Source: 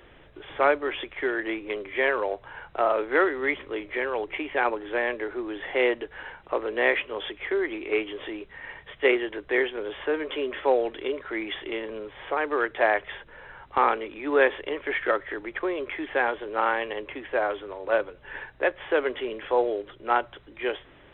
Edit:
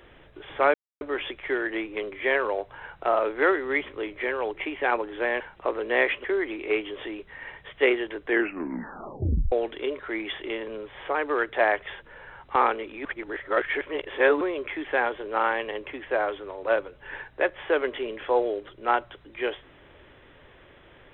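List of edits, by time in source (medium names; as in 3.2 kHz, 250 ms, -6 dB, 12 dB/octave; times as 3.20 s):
0.74 s: insert silence 0.27 s
5.13–6.27 s: delete
7.11–7.46 s: delete
9.48 s: tape stop 1.26 s
14.27–15.63 s: reverse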